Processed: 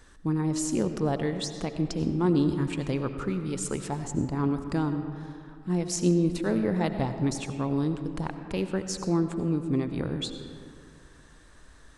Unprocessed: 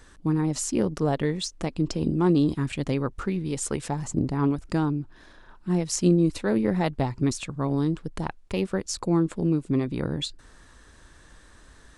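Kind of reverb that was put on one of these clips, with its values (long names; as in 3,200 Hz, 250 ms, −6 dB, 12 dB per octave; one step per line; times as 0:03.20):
comb and all-pass reverb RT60 2.4 s, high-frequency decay 0.45×, pre-delay 50 ms, DRR 8 dB
level −3 dB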